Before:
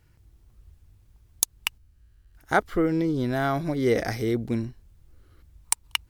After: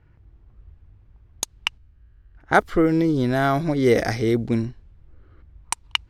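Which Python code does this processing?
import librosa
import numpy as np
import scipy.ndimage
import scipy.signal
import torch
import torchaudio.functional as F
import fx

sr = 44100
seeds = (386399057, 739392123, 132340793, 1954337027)

y = fx.env_lowpass(x, sr, base_hz=1900.0, full_db=-20.0)
y = F.gain(torch.from_numpy(y), 5.0).numpy()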